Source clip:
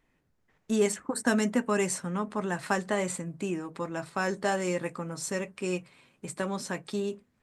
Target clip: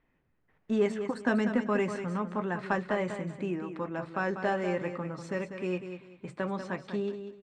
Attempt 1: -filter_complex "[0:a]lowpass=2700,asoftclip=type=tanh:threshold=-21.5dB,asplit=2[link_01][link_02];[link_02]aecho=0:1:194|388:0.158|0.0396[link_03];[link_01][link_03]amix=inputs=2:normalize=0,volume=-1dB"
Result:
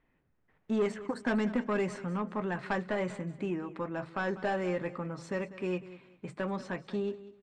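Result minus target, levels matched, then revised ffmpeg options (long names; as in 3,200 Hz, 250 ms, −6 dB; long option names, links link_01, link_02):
soft clipping: distortion +17 dB; echo-to-direct −7 dB
-filter_complex "[0:a]lowpass=2700,asoftclip=type=tanh:threshold=-10dB,asplit=2[link_01][link_02];[link_02]aecho=0:1:194|388|582:0.355|0.0887|0.0222[link_03];[link_01][link_03]amix=inputs=2:normalize=0,volume=-1dB"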